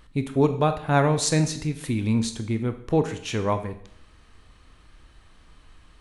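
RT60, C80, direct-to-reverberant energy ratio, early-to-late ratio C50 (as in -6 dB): 0.65 s, 15.0 dB, 8.5 dB, 12.0 dB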